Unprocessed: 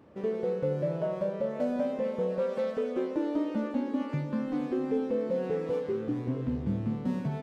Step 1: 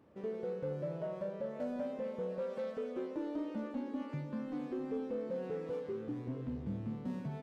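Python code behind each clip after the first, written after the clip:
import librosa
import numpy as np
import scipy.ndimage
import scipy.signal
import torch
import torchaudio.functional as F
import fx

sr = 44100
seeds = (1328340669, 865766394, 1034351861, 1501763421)

y = 10.0 ** (-19.5 / 20.0) * np.tanh(x / 10.0 ** (-19.5 / 20.0))
y = F.gain(torch.from_numpy(y), -8.0).numpy()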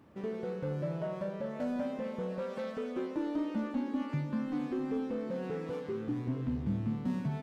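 y = fx.peak_eq(x, sr, hz=500.0, db=-7.0, octaves=0.87)
y = F.gain(torch.from_numpy(y), 7.0).numpy()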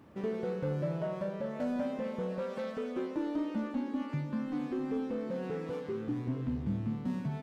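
y = fx.rider(x, sr, range_db=10, speed_s=2.0)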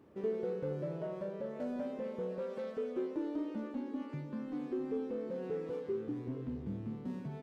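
y = fx.peak_eq(x, sr, hz=410.0, db=9.5, octaves=0.82)
y = F.gain(torch.from_numpy(y), -8.0).numpy()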